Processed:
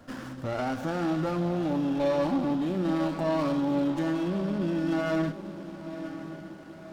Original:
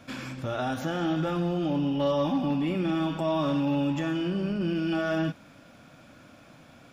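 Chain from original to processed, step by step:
Butterworth band-reject 2,400 Hz, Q 2.5
parametric band 140 Hz −7 dB 0.27 octaves
feedback delay with all-pass diffusion 997 ms, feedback 52%, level −12 dB
windowed peak hold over 9 samples

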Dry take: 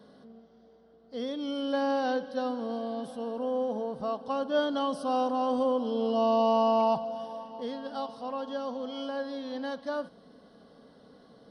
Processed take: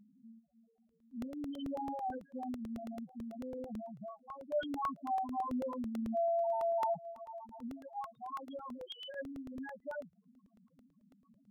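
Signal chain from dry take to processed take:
0:08.78–0:09.21: three sine waves on the formant tracks
reverb reduction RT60 0.67 s
parametric band 430 Hz −15 dB 0.87 octaves
0:03.91–0:04.52: downward compressor 3 to 1, threshold −43 dBFS, peak gain reduction 9 dB
spectral peaks only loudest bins 2
regular buffer underruns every 0.11 s, samples 64, repeat, from 0:00.78
level +1.5 dB

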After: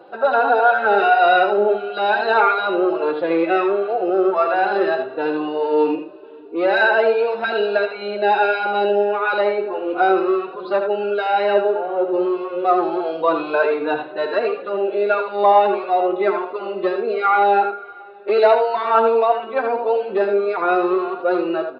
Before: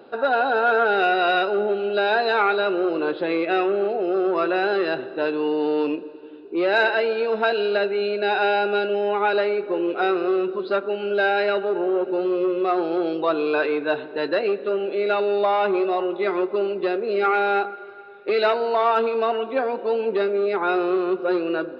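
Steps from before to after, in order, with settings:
parametric band 850 Hz +9 dB 1.9 octaves
on a send: single-tap delay 79 ms −7 dB
on the sum: barber-pole flanger 3.6 ms +1.5 Hz

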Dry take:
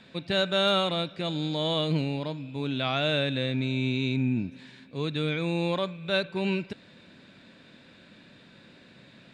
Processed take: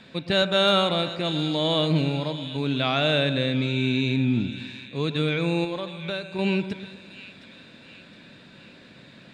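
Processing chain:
0:05.64–0:06.39: downward compressor 6 to 1, threshold −32 dBFS, peak gain reduction 10 dB
on a send: echo with a time of its own for lows and highs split 1,700 Hz, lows 120 ms, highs 716 ms, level −12 dB
on the sum: level +4 dB

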